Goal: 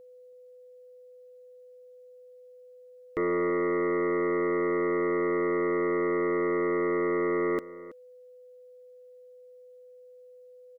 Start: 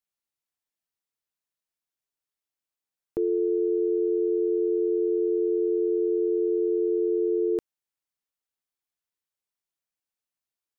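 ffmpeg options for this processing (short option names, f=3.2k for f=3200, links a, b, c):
-filter_complex "[0:a]aeval=exprs='0.126*(cos(1*acos(clip(val(0)/0.126,-1,1)))-cos(1*PI/2))+0.00631*(cos(2*acos(clip(val(0)/0.126,-1,1)))-cos(2*PI/2))+0.001*(cos(4*acos(clip(val(0)/0.126,-1,1)))-cos(4*PI/2))+0.0447*(cos(5*acos(clip(val(0)/0.126,-1,1)))-cos(5*PI/2))':c=same,aeval=exprs='val(0)+0.00501*sin(2*PI*500*n/s)':c=same,asplit=2[a][b];[b]adelay=326.5,volume=-17dB,highshelf=f=4k:g=-7.35[c];[a][c]amix=inputs=2:normalize=0,volume=-3dB"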